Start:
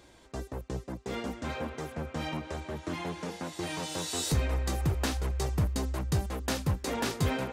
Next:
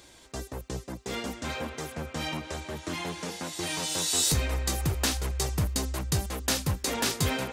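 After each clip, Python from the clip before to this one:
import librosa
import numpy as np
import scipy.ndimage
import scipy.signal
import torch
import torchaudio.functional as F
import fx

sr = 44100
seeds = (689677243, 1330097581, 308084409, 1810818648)

y = fx.high_shelf(x, sr, hz=2500.0, db=10.5)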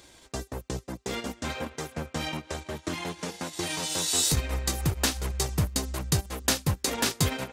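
y = fx.transient(x, sr, attack_db=4, sustain_db=-11)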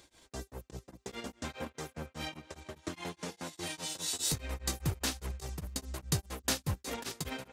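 y = x * np.abs(np.cos(np.pi * 4.9 * np.arange(len(x)) / sr))
y = y * 10.0 ** (-5.5 / 20.0)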